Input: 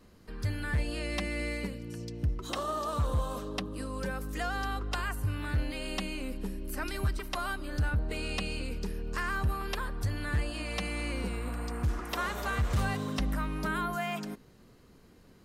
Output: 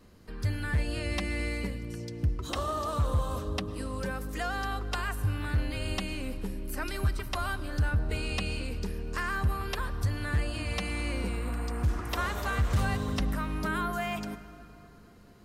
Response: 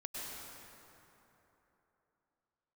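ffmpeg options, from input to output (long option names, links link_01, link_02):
-filter_complex "[0:a]asplit=2[link_01][link_02];[link_02]equalizer=frequency=89:width=1:gain=11[link_03];[1:a]atrim=start_sample=2205[link_04];[link_03][link_04]afir=irnorm=-1:irlink=0,volume=-13.5dB[link_05];[link_01][link_05]amix=inputs=2:normalize=0"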